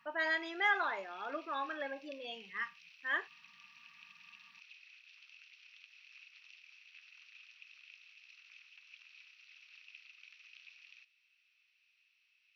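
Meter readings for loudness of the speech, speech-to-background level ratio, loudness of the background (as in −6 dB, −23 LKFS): −37.0 LKFS, 19.5 dB, −56.5 LKFS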